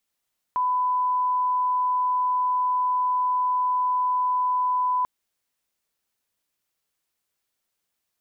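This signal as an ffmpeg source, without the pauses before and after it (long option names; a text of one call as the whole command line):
ffmpeg -f lavfi -i "sine=frequency=1000:duration=4.49:sample_rate=44100,volume=-1.94dB" out.wav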